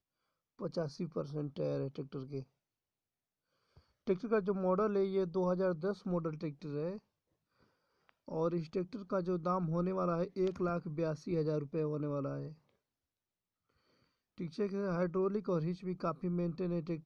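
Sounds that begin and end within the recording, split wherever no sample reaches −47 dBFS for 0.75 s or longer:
0:04.07–0:06.98
0:08.09–0:12.53

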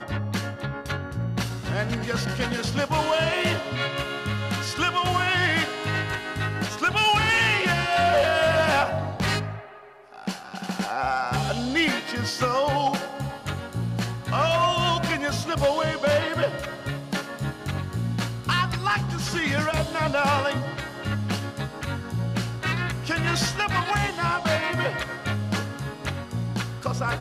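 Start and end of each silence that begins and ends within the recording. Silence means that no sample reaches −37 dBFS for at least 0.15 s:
0:09.84–0:10.13

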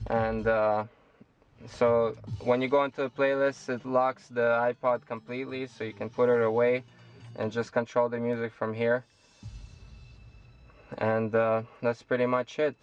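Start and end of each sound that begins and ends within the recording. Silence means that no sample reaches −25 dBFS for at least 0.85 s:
0:01.81–0:08.97

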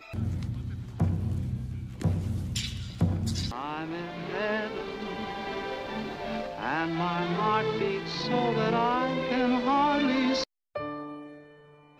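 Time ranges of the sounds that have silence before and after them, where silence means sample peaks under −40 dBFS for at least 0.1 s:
0:10.75–0:11.39

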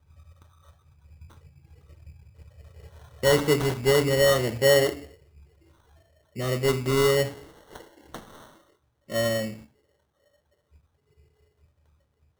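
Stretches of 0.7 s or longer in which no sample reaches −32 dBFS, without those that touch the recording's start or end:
0:04.97–0:06.37
0:08.16–0:09.12

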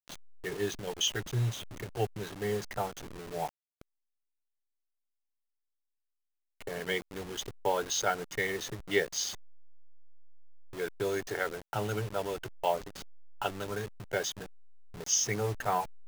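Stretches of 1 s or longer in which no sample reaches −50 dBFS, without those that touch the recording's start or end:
0:03.81–0:06.61

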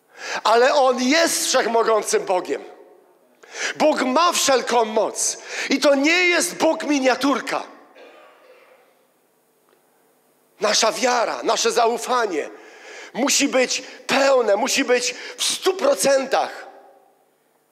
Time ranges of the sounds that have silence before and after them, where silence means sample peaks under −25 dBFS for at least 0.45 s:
0:03.55–0:07.64
0:10.62–0:12.46
0:13.16–0:16.52

